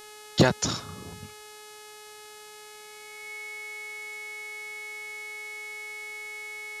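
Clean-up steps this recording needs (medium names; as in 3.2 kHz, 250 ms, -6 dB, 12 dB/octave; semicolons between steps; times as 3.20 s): clip repair -10 dBFS; de-hum 423.2 Hz, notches 29; band-stop 2.2 kHz, Q 30; noise print and reduce 30 dB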